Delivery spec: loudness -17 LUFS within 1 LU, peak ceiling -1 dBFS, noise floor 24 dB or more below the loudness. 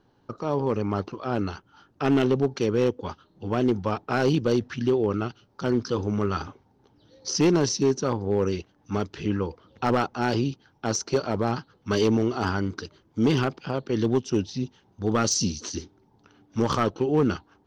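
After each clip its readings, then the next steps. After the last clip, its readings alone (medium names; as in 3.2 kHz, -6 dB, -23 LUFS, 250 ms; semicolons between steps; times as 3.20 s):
clipped samples 0.8%; clipping level -14.5 dBFS; loudness -26.0 LUFS; peak level -14.5 dBFS; loudness target -17.0 LUFS
-> clip repair -14.5 dBFS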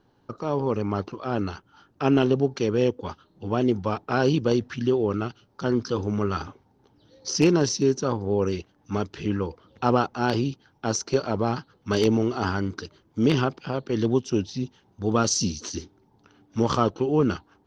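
clipped samples 0.0%; loudness -25.5 LUFS; peak level -5.5 dBFS; loudness target -17.0 LUFS
-> trim +8.5 dB; peak limiter -1 dBFS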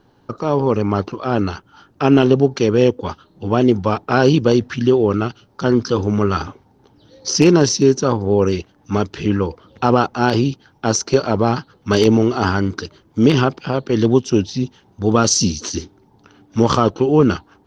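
loudness -17.0 LUFS; peak level -1.0 dBFS; noise floor -55 dBFS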